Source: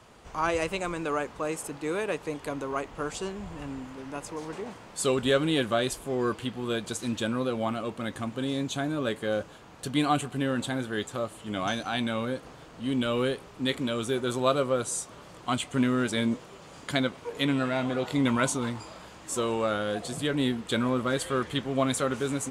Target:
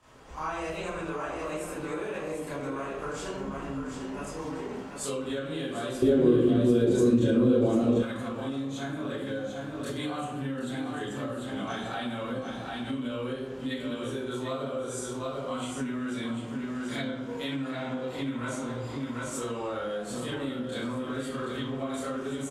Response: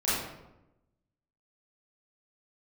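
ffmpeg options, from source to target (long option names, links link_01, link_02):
-filter_complex "[0:a]aecho=1:1:744:0.447[link_01];[1:a]atrim=start_sample=2205,asetrate=52920,aresample=44100[link_02];[link_01][link_02]afir=irnorm=-1:irlink=0,acompressor=threshold=-22dB:ratio=6,asettb=1/sr,asplit=3[link_03][link_04][link_05];[link_03]atrim=end=6.024[link_06];[link_04]atrim=start=6.02:end=8.03,asetpts=PTS-STARTPTS,afade=type=in:duration=0.004:curve=qsin,afade=type=out:start_time=2.006:duration=0.004:curve=qsin,lowshelf=frequency=620:width_type=q:width=1.5:gain=11[link_07];[link_05]atrim=start=8.026[link_08];[link_06][link_07]acrossfade=duration=0.004:curve1=hsin:curve2=qsin[link_09];[link_09][link_08]acrossfade=duration=0.004:curve1=qsin:curve2=hsin,volume=-8.5dB"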